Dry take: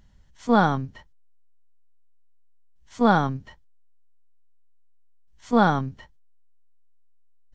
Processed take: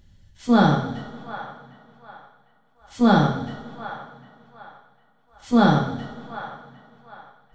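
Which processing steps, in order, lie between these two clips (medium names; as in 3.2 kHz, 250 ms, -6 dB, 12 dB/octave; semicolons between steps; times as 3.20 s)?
fifteen-band graphic EQ 100 Hz +8 dB, 1 kHz -7 dB, 4 kHz +4 dB; feedback echo behind a band-pass 754 ms, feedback 32%, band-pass 1.4 kHz, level -11.5 dB; two-slope reverb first 0.6 s, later 2.8 s, from -16 dB, DRR -0.5 dB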